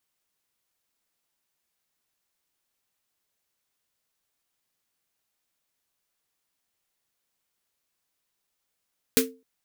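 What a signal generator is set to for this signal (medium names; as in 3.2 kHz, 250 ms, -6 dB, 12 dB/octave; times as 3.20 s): snare drum length 0.26 s, tones 260 Hz, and 450 Hz, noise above 1.3 kHz, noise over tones 2 dB, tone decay 0.31 s, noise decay 0.16 s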